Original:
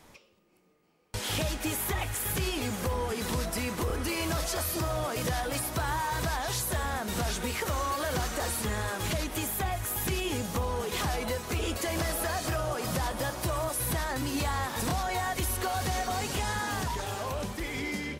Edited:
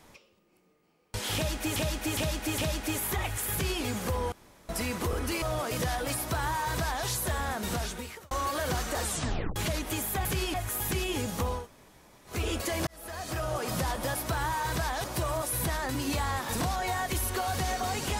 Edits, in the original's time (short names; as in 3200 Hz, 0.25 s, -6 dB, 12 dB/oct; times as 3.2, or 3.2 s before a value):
1.35–1.76 loop, 4 plays
2.3–2.59 copy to 9.7
3.09–3.46 room tone
4.19–4.87 cut
5.62–6.51 copy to 13.31
7.13–7.76 fade out
8.48 tape stop 0.53 s
10.76–11.48 room tone, crossfade 0.16 s
12.03–12.7 fade in